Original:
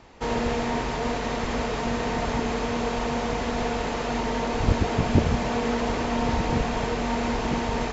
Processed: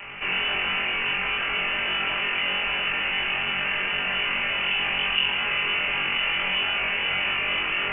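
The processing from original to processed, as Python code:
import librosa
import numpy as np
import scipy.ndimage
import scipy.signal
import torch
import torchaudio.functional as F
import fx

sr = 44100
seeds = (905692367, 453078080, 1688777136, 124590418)

y = fx.lower_of_two(x, sr, delay_ms=5.0)
y = scipy.signal.sosfilt(scipy.signal.butter(2, 320.0, 'highpass', fs=sr, output='sos'), y)
y = fx.room_flutter(y, sr, wall_m=3.7, rt60_s=0.42)
y = fx.freq_invert(y, sr, carrier_hz=3200)
y = fx.env_flatten(y, sr, amount_pct=50)
y = F.gain(torch.from_numpy(y), -3.0).numpy()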